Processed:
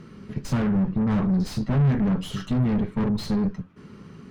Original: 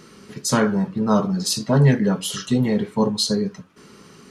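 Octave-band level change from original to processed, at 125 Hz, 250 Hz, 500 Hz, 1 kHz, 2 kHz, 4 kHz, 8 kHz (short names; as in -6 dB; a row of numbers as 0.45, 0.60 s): -2.0, -2.0, -9.5, -8.5, -8.5, -13.5, -18.5 dB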